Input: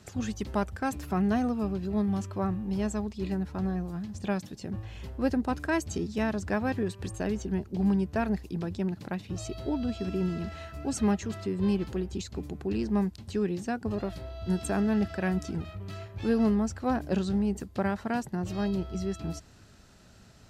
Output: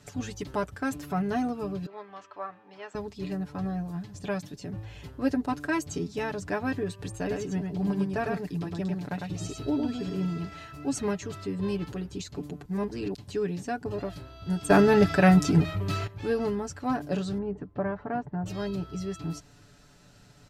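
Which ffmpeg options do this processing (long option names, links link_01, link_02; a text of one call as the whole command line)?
ffmpeg -i in.wav -filter_complex "[0:a]asettb=1/sr,asplit=3[link_01][link_02][link_03];[link_01]atrim=end=1.864[link_04];[link_02]atrim=start=1.86:end=2.95,asetpts=PTS-STARTPTS,afade=type=in:duration=0.004:curve=qsin,afade=type=out:start_time=1.086:duration=0.004:curve=qsin,highpass=770,lowpass=2800[link_05];[link_03]atrim=start=2.946[link_06];[link_04][link_05]acrossfade=duration=0.004:curve1=hsin:curve2=qsin[link_07];[link_07][link_06]acrossfade=duration=0.004:curve1=qsin:curve2=hsin,asettb=1/sr,asplit=3[link_08][link_09][link_10];[link_08]atrim=end=7.194[link_11];[link_09]atrim=start=7.19:end=10.25,asetpts=PTS-STARTPTS,afade=type=in:duration=0.004:curve=qsin,afade=type=out:start_time=3.056:duration=0.004:curve=qsin,aecho=1:1:103:0.668,atrim=end_sample=134946[link_12];[link_10]atrim=start=10.246[link_13];[link_11][link_12]acrossfade=duration=0.004:curve1=hsin:curve2=qsin[link_14];[link_14][link_13]acrossfade=duration=0.004:curve1=qsin:curve2=hsin,asettb=1/sr,asplit=3[link_15][link_16][link_17];[link_15]atrim=end=17.384[link_18];[link_16]atrim=start=17.38:end=18.46,asetpts=PTS-STARTPTS,afade=type=in:duration=0.004:curve=qsin,afade=type=out:start_time=1.076:duration=0.004:curve=qsin,lowpass=1400[link_19];[link_17]atrim=start=18.456[link_20];[link_18][link_19]acrossfade=duration=0.004:curve1=hsin:curve2=qsin[link_21];[link_21][link_20]acrossfade=duration=0.004:curve1=qsin:curve2=hsin,asplit=5[link_22][link_23][link_24][link_25][link_26];[link_22]atrim=end=12.652[link_27];[link_23]atrim=start=12.648:end=13.142,asetpts=PTS-STARTPTS,areverse[link_28];[link_24]atrim=start=13.138:end=14.702[link_29];[link_25]atrim=start=14.698:end=16.072,asetpts=PTS-STARTPTS,volume=11.5dB[link_30];[link_26]atrim=start=16.068[link_31];[link_27][link_28]acrossfade=duration=0.004:curve1=hsin:curve2=hsin[link_32];[link_32][link_29]acrossfade=duration=0.004:curve1=hsin:curve2=hsin[link_33];[link_33][link_30]acrossfade=duration=0.004:curve1=hsin:curve2=hsin[link_34];[link_34][link_31]acrossfade=duration=0.004:curve1=hsin:curve2=hsin,aecho=1:1:6.9:0.74,volume=-1.5dB" out.wav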